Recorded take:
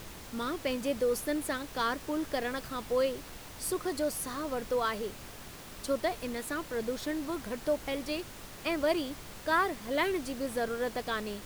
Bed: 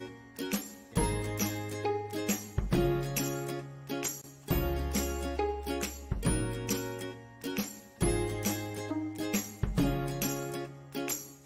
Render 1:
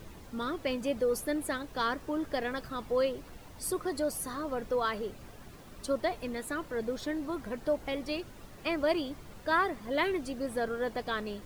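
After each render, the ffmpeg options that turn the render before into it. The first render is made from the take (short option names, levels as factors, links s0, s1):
-af "afftdn=nr=10:nf=-47"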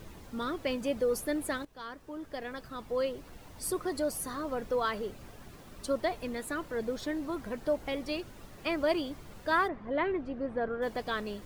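-filter_complex "[0:a]asplit=3[s0][s1][s2];[s0]afade=t=out:st=9.67:d=0.02[s3];[s1]lowpass=1800,afade=t=in:st=9.67:d=0.02,afade=t=out:st=10.81:d=0.02[s4];[s2]afade=t=in:st=10.81:d=0.02[s5];[s3][s4][s5]amix=inputs=3:normalize=0,asplit=2[s6][s7];[s6]atrim=end=1.65,asetpts=PTS-STARTPTS,afade=t=out:st=1.646:d=0.004:c=hsin:silence=0.158489[s8];[s7]atrim=start=1.65,asetpts=PTS-STARTPTS,afade=t=in:d=1.96:silence=0.158489[s9];[s8][s9]concat=n=2:v=0:a=1"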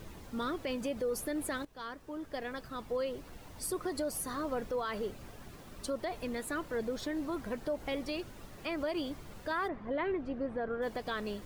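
-af "alimiter=level_in=1.33:limit=0.0631:level=0:latency=1:release=92,volume=0.75"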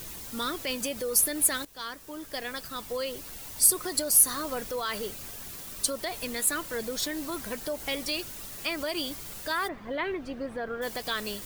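-af "crystalizer=i=7:c=0"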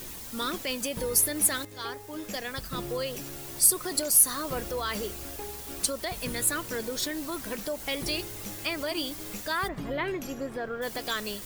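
-filter_complex "[1:a]volume=0.335[s0];[0:a][s0]amix=inputs=2:normalize=0"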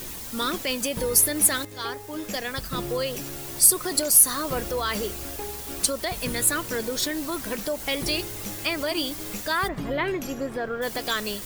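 -af "volume=1.68,alimiter=limit=0.708:level=0:latency=1"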